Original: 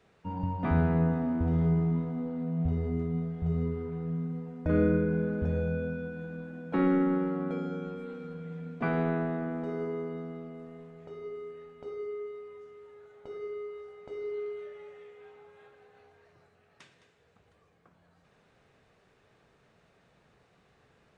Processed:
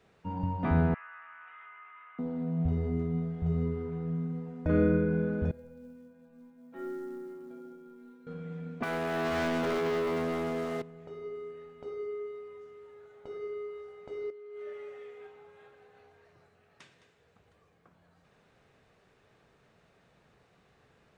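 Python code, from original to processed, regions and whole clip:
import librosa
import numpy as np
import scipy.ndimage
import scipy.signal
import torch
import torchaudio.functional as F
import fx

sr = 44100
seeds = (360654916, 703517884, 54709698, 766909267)

y = fx.chain(x, sr, fx.cheby1_bandpass(low_hz=1200.0, high_hz=2800.0, order=3),
    fx.env_flatten(amount_pct=50), at=(0.94, 2.19))
y = fx.chain(y, sr, fx.hum_notches(base_hz=60, count=7),
    fx.stiff_resonator(f0_hz=120.0, decay_s=0.68, stiffness=0.008),
    fx.quant_float(bits=4), at=(5.51, 8.27))
y = fx.chain(y, sr, fx.highpass(hz=610.0, slope=6),
    fx.over_compress(threshold_db=-39.0, ratio=-0.5),
    fx.leveller(passes=5), at=(8.83, 10.82))
y = fx.chain(y, sr, fx.highpass(hz=120.0, slope=12),
    fx.over_compress(threshold_db=-43.0, ratio=-1.0),
    fx.notch_comb(f0_hz=170.0), at=(14.3, 15.27))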